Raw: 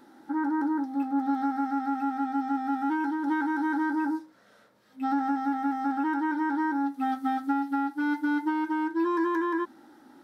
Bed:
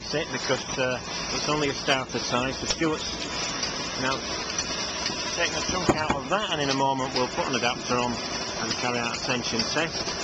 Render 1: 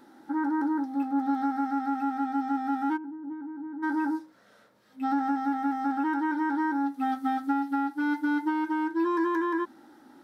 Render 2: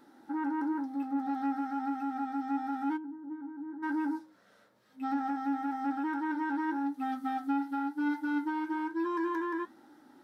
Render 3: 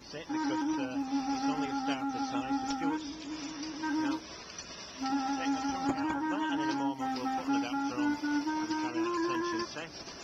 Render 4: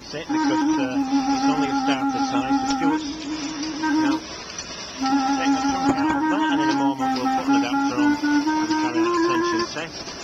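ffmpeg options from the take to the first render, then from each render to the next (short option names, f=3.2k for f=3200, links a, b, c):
-filter_complex "[0:a]asplit=3[a][b][c];[a]afade=t=out:st=2.96:d=0.02[d];[b]bandpass=f=120:t=q:w=1.2,afade=t=in:st=2.96:d=0.02,afade=t=out:st=3.82:d=0.02[e];[c]afade=t=in:st=3.82:d=0.02[f];[d][e][f]amix=inputs=3:normalize=0"
-af "flanger=delay=6.6:depth=4.3:regen=70:speed=1:shape=sinusoidal,asoftclip=type=tanh:threshold=-22.5dB"
-filter_complex "[1:a]volume=-15.5dB[a];[0:a][a]amix=inputs=2:normalize=0"
-af "volume=11.5dB"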